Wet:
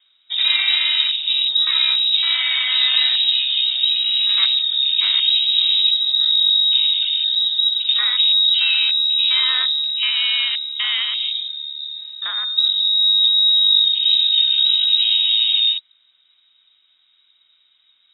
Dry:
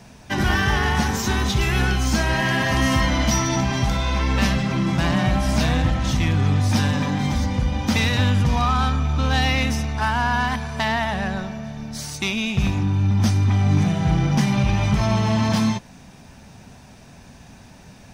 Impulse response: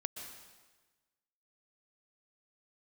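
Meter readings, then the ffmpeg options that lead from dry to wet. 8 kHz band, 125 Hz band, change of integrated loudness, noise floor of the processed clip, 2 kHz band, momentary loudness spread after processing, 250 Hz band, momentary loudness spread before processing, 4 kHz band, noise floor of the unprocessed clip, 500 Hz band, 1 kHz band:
below −40 dB, below −40 dB, +6.5 dB, −60 dBFS, −1.5 dB, 7 LU, below −40 dB, 5 LU, +18.0 dB, −46 dBFS, below −25 dB, −16.0 dB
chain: -af "afwtdn=0.0631,lowpass=frequency=3300:width_type=q:width=0.5098,lowpass=frequency=3300:width_type=q:width=0.6013,lowpass=frequency=3300:width_type=q:width=0.9,lowpass=frequency=3300:width_type=q:width=2.563,afreqshift=-3900,highshelf=frequency=2300:gain=10,volume=-4.5dB"

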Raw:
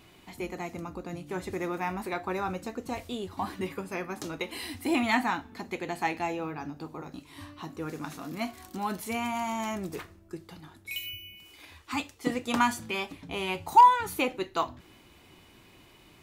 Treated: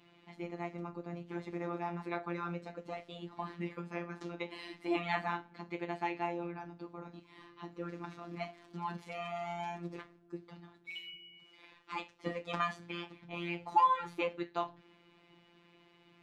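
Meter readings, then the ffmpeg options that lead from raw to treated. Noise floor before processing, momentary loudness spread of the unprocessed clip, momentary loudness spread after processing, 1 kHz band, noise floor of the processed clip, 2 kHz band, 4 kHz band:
−57 dBFS, 17 LU, 15 LU, −9.0 dB, −65 dBFS, −8.5 dB, −9.5 dB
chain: -af "highpass=110,lowpass=3400,flanger=delay=7:depth=5.1:regen=-63:speed=0.62:shape=sinusoidal,afftfilt=real='hypot(re,im)*cos(PI*b)':imag='0':win_size=1024:overlap=0.75,volume=1dB"

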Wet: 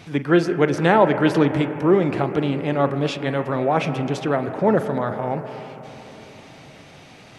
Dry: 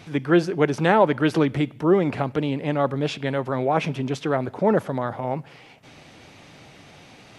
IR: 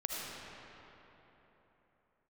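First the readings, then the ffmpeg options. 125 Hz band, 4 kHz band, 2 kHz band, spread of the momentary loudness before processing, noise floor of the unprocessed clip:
+2.0 dB, +1.5 dB, +2.5 dB, 9 LU, −48 dBFS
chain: -filter_complex "[0:a]asplit=2[link_01][link_02];[link_02]highshelf=frequency=3800:width_type=q:width=3:gain=-8[link_03];[1:a]atrim=start_sample=2205,lowpass=frequency=2200:width=0.5412,lowpass=frequency=2200:width=1.3066,adelay=42[link_04];[link_03][link_04]afir=irnorm=-1:irlink=0,volume=-12dB[link_05];[link_01][link_05]amix=inputs=2:normalize=0,volume=1.5dB"

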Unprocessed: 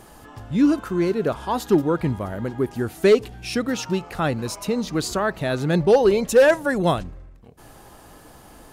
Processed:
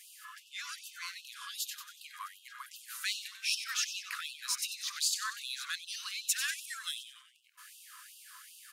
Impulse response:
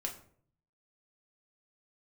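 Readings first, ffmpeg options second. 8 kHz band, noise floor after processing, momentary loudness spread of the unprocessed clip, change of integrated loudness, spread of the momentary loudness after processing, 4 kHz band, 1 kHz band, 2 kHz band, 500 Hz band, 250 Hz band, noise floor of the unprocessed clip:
+0.5 dB, −61 dBFS, 11 LU, −14.5 dB, 19 LU, −1.0 dB, −19.5 dB, −10.0 dB, below −40 dB, below −40 dB, −47 dBFS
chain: -filter_complex "[0:a]acrossover=split=340|3000[link_01][link_02][link_03];[link_02]acompressor=threshold=-32dB:ratio=6[link_04];[link_01][link_04][link_03]amix=inputs=3:normalize=0,asplit=6[link_05][link_06][link_07][link_08][link_09][link_10];[link_06]adelay=94,afreqshift=-99,volume=-10dB[link_11];[link_07]adelay=188,afreqshift=-198,volume=-16dB[link_12];[link_08]adelay=282,afreqshift=-297,volume=-22dB[link_13];[link_09]adelay=376,afreqshift=-396,volume=-28.1dB[link_14];[link_10]adelay=470,afreqshift=-495,volume=-34.1dB[link_15];[link_05][link_11][link_12][link_13][link_14][link_15]amix=inputs=6:normalize=0,afftfilt=real='re*gte(b*sr/1024,960*pow(2600/960,0.5+0.5*sin(2*PI*2.6*pts/sr)))':imag='im*gte(b*sr/1024,960*pow(2600/960,0.5+0.5*sin(2*PI*2.6*pts/sr)))':win_size=1024:overlap=0.75"

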